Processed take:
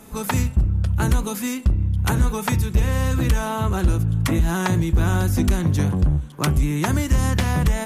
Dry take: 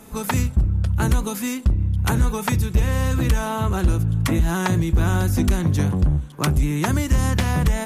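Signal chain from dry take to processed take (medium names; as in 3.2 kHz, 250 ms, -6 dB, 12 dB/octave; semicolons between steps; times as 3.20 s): de-hum 226.5 Hz, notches 14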